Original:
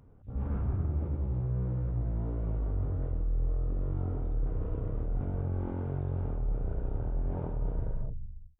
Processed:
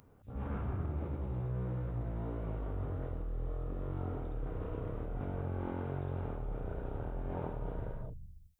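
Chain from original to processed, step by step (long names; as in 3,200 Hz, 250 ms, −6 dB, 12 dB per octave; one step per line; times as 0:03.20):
spectral tilt +2.5 dB per octave
level +2.5 dB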